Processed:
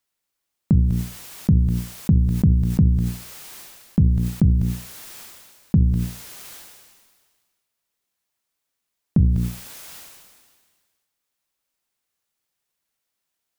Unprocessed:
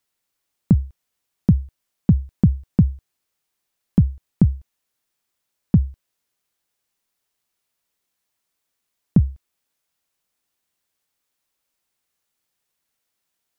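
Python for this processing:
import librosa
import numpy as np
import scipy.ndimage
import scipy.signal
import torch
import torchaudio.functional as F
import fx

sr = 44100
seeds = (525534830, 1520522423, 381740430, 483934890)

y = fx.hum_notches(x, sr, base_hz=60, count=8)
y = fx.sustainer(y, sr, db_per_s=35.0)
y = y * 10.0 ** (-2.0 / 20.0)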